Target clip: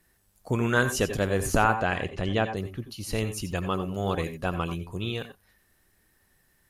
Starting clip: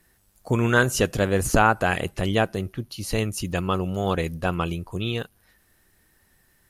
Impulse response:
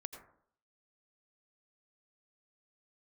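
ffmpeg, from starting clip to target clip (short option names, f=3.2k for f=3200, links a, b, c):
-filter_complex "[0:a]asettb=1/sr,asplit=3[a][b][c];[a]atrim=end=1.744[d];[b]atrim=start=1.74:end=2.57,asetpts=PTS-STARTPTS,afade=t=in:d=0.004:c=qsin,afade=t=out:st=0.826:d=0.004:c=qsin,lowpass=5.4k[e];[c]atrim=start=2.566[f];[d][e]acrossfade=d=0.004:c1=hsin:c2=qsin[g];[g][f]acrossfade=d=0.004:c1=qsin:c2=hsin[h];[1:a]atrim=start_sample=2205,atrim=end_sample=4410[i];[h][i]afir=irnorm=-1:irlink=0"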